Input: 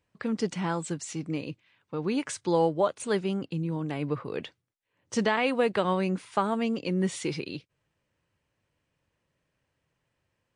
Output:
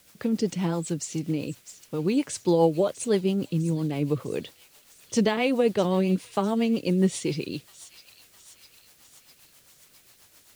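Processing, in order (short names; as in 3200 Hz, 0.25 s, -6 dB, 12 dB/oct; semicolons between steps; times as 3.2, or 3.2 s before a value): bell 1500 Hz -9 dB 1.4 oct; requantised 10-bit, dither triangular; thin delay 0.653 s, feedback 59%, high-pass 3400 Hz, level -11 dB; rotary speaker horn 7.5 Hz; gain +6.5 dB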